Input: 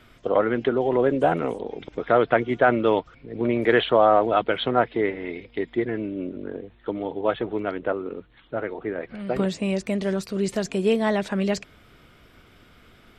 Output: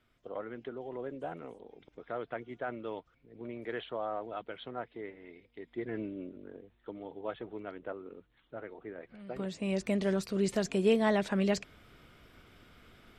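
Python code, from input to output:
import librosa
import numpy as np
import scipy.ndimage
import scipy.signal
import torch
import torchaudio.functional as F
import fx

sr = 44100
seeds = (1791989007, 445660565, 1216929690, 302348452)

y = fx.gain(x, sr, db=fx.line((5.6, -19.5), (5.99, -8.0), (6.41, -15.0), (9.36, -15.0), (9.83, -5.0)))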